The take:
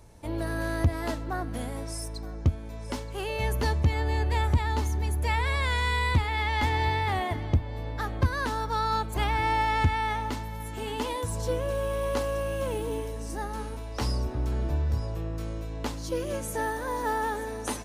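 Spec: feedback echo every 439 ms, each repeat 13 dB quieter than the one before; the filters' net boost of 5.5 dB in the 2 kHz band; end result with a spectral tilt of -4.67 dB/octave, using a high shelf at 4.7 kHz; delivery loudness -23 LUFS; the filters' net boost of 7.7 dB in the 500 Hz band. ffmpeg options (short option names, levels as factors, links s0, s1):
-af "equalizer=f=500:t=o:g=8.5,equalizer=f=2000:t=o:g=4.5,highshelf=f=4700:g=8,aecho=1:1:439|878|1317:0.224|0.0493|0.0108,volume=1.33"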